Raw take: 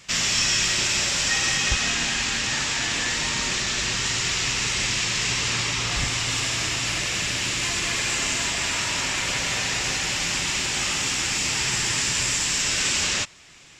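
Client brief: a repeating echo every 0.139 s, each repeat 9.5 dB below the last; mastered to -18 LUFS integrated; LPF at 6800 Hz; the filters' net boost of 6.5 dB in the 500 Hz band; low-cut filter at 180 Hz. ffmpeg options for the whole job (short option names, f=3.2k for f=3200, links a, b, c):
-af "highpass=180,lowpass=6.8k,equalizer=f=500:t=o:g=8.5,aecho=1:1:139|278|417|556:0.335|0.111|0.0365|0.012,volume=4.5dB"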